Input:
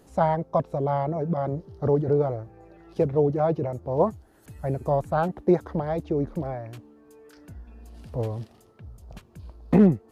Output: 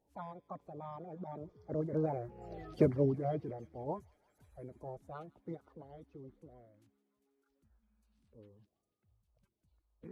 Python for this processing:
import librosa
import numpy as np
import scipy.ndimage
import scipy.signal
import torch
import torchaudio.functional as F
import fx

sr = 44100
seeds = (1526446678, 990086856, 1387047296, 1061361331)

y = fx.spec_quant(x, sr, step_db=30)
y = fx.doppler_pass(y, sr, speed_mps=25, closest_m=2.5, pass_at_s=2.57)
y = fx.echo_wet_highpass(y, sr, ms=163, feedback_pct=83, hz=2300.0, wet_db=-17.5)
y = y * 10.0 ** (5.0 / 20.0)